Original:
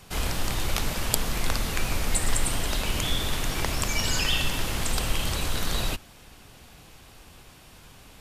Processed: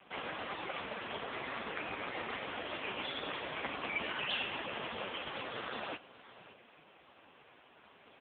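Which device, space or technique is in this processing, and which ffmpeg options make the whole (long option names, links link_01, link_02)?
satellite phone: -af "highpass=320,lowpass=3100,aecho=1:1:567:0.133" -ar 8000 -c:a libopencore_amrnb -b:a 4750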